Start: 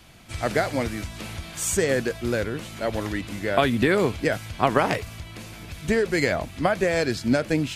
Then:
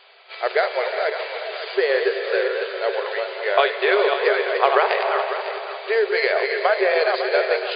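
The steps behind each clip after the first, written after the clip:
feedback delay that plays each chunk backwards 276 ms, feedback 54%, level −5 dB
reverb whose tail is shaped and stops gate 440 ms rising, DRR 7.5 dB
brick-wall band-pass 370–4,900 Hz
level +3.5 dB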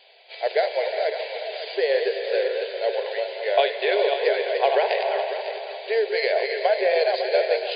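phaser with its sweep stopped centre 330 Hz, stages 6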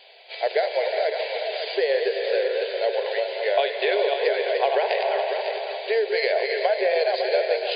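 downward compressor 2 to 1, threshold −25 dBFS, peak gain reduction 6.5 dB
level +3.5 dB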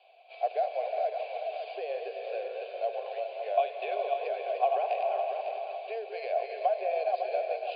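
formant filter a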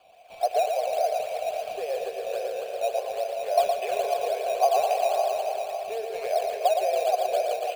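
in parallel at −3 dB: sample-and-hold swept by an LFO 11×, swing 60% 3.6 Hz
on the sum: single-tap delay 115 ms −5.5 dB

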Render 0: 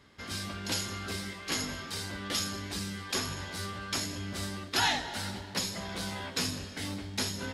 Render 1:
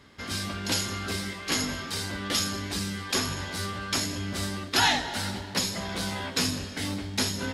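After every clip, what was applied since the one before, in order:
parametric band 260 Hz +2.5 dB 0.24 octaves
level +5 dB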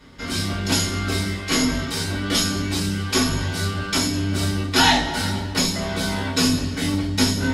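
convolution reverb RT60 0.30 s, pre-delay 3 ms, DRR −4 dB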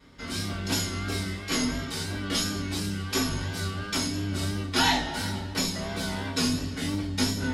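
pitch vibrato 2.9 Hz 43 cents
level −7 dB

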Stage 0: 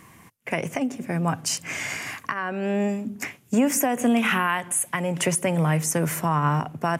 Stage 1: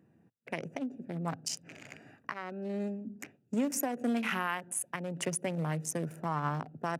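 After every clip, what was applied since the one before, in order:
adaptive Wiener filter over 41 samples
Bessel high-pass filter 160 Hz
dynamic equaliser 5,300 Hz, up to +5 dB, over −50 dBFS, Q 2.1
level −8.5 dB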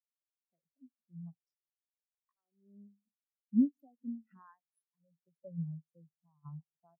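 shaped tremolo saw down 0.93 Hz, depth 55%
every bin expanded away from the loudest bin 4 to 1
level +2 dB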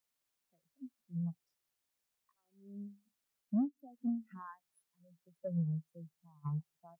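downward compressor 3 to 1, threshold −41 dBFS, peak gain reduction 14.5 dB
soft clipping −35.5 dBFS, distortion −17 dB
level +10 dB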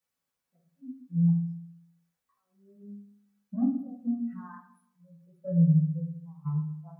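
convolution reverb RT60 0.65 s, pre-delay 3 ms, DRR −7.5 dB
level −5 dB

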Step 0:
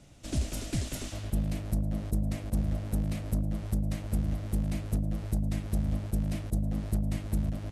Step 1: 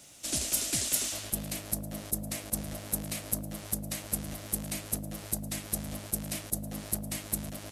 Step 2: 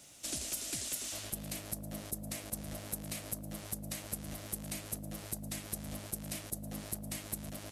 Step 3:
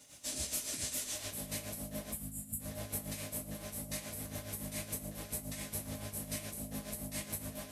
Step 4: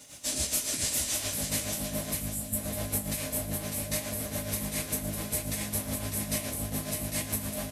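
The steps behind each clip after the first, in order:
RIAA equalisation recording; level +2 dB
downward compressor, threshold −32 dBFS, peak gain reduction 9 dB; level −3 dB
time-frequency box erased 0:02.12–0:02.60, 260–6,800 Hz; coupled-rooms reverb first 0.43 s, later 3.5 s, from −21 dB, DRR −8 dB; amplitude tremolo 7.1 Hz, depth 62%; level −5 dB
repeating echo 601 ms, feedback 27%, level −6 dB; level +8 dB

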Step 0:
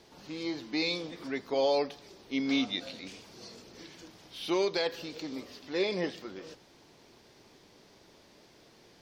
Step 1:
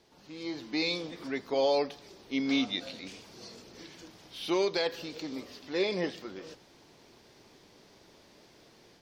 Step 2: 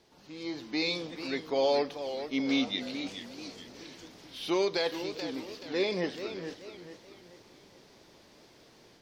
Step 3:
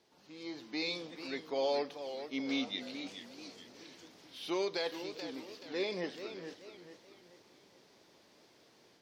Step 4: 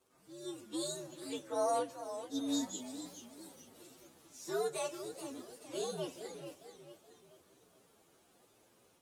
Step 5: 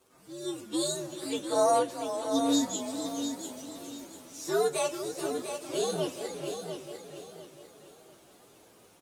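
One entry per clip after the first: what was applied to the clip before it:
automatic gain control gain up to 7 dB; level −6.5 dB
feedback echo with a swinging delay time 433 ms, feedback 40%, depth 134 cents, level −10 dB
high-pass filter 180 Hz 6 dB per octave; level −5.5 dB
partials spread apart or drawn together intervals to 124%; level +1 dB
repeating echo 698 ms, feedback 31%, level −8 dB; level +8.5 dB

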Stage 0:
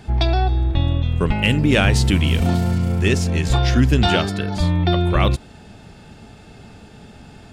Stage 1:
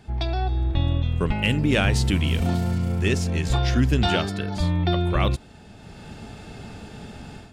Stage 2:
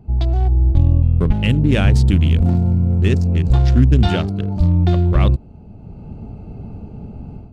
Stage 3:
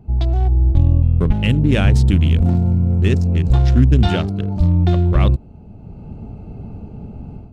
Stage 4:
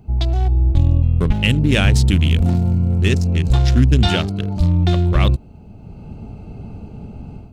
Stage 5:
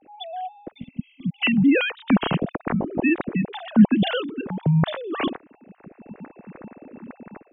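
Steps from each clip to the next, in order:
automatic gain control gain up to 11.5 dB; level −8.5 dB
adaptive Wiener filter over 25 samples; low-shelf EQ 260 Hz +10.5 dB
notch filter 4,600 Hz, Q 22
high-shelf EQ 2,000 Hz +10.5 dB; level −1 dB
three sine waves on the formant tracks; gain on a spectral selection 0:00.71–0:01.41, 270–2,000 Hz −28 dB; level −8 dB

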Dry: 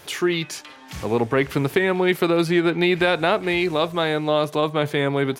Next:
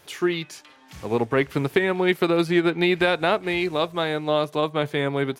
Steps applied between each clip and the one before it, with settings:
expander for the loud parts 1.5 to 1, over −31 dBFS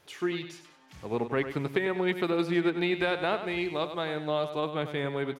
high-shelf EQ 9,000 Hz −7.5 dB
repeating echo 98 ms, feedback 35%, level −10 dB
level −7.5 dB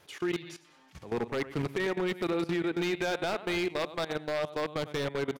output level in coarse steps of 16 dB
wave folding −26.5 dBFS
level +3.5 dB

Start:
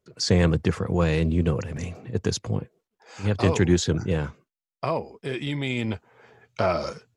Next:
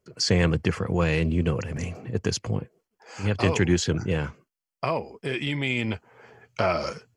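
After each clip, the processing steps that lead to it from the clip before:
notch filter 3,700 Hz, Q 6
dynamic equaliser 2,700 Hz, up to +6 dB, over −43 dBFS, Q 0.83
in parallel at 0 dB: downward compressor, threshold −31 dBFS, peak gain reduction 16 dB
on the sum: level −3.5 dB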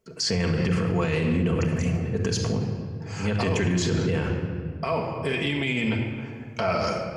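rectangular room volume 3,100 cubic metres, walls mixed, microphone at 1.6 metres
brickwall limiter −17.5 dBFS, peak gain reduction 10.5 dB
level +2 dB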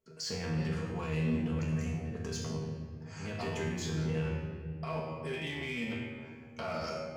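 hard clipping −19 dBFS, distortion −19 dB
tuned comb filter 79 Hz, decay 0.61 s, harmonics all, mix 90%

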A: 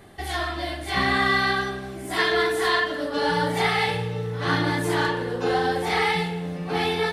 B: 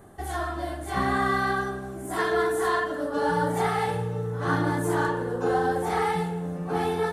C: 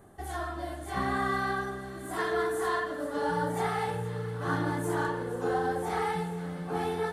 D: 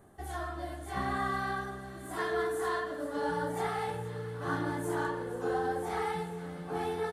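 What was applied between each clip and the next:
flat-topped bell 3,200 Hz −12 dB; level −1 dB
delay with a high-pass on its return 473 ms, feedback 78%, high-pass 1,600 Hz, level −13.5 dB; level −5 dB
double-tracking delay 14 ms −11 dB; level −3.5 dB

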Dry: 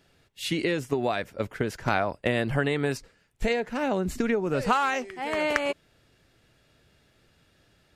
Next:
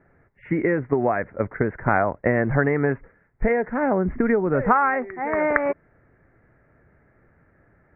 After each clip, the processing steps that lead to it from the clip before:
Butterworth low-pass 2,100 Hz 72 dB per octave
level +5.5 dB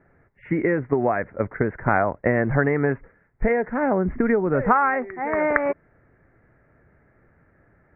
no processing that can be heard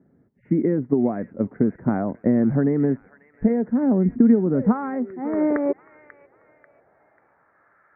band-pass filter sweep 230 Hz → 1,300 Hz, 0:05.06–0:07.85
delay with a high-pass on its return 540 ms, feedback 39%, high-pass 2,300 Hz, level −6 dB
level +8.5 dB

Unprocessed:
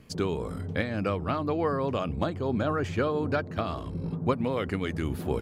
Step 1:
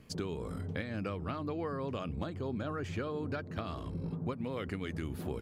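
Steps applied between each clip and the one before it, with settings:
dynamic equaliser 750 Hz, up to −4 dB, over −38 dBFS, Q 1.1
downward compressor 4 to 1, threshold −30 dBFS, peak gain reduction 8 dB
level −3.5 dB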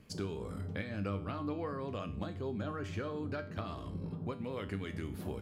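tuned comb filter 99 Hz, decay 0.46 s, harmonics all, mix 70%
level +5.5 dB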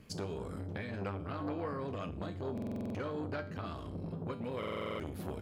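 buffer that repeats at 0:02.53/0:04.58, samples 2,048, times 8
saturating transformer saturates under 710 Hz
level +2.5 dB

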